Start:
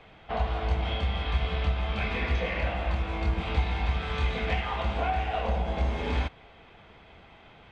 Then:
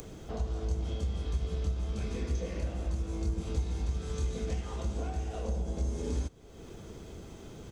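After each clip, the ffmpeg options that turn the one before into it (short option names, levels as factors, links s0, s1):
-af "acompressor=mode=upward:threshold=0.0251:ratio=2.5,firequalizer=gain_entry='entry(210,0);entry(370,3);entry(740,-14);entry(1300,-12);entry(2200,-18);entry(3500,-10);entry(6300,14)':delay=0.05:min_phase=1,acompressor=threshold=0.0178:ratio=1.5"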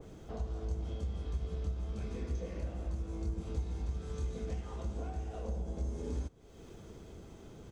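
-af "adynamicequalizer=threshold=0.00112:dfrequency=1900:dqfactor=0.7:tfrequency=1900:tqfactor=0.7:attack=5:release=100:ratio=0.375:range=2.5:mode=cutabove:tftype=highshelf,volume=0.596"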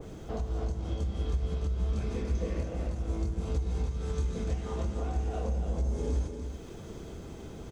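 -af "alimiter=level_in=2.11:limit=0.0631:level=0:latency=1:release=164,volume=0.473,aecho=1:1:291:0.473,volume=2.24"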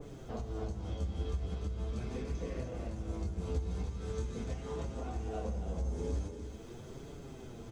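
-af "flanger=delay=6.8:depth=4.8:regen=32:speed=0.42:shape=triangular"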